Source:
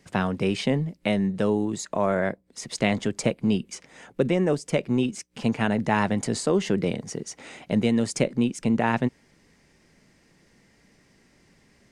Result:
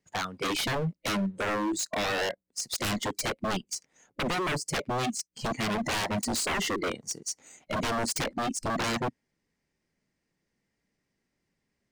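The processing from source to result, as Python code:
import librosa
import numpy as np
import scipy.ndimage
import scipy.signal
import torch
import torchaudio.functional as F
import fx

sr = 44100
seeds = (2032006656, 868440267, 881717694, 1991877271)

y = fx.leveller(x, sr, passes=1)
y = fx.noise_reduce_blind(y, sr, reduce_db=20)
y = 10.0 ** (-25.5 / 20.0) * (np.abs((y / 10.0 ** (-25.5 / 20.0) + 3.0) % 4.0 - 2.0) - 1.0)
y = y * 10.0 ** (1.5 / 20.0)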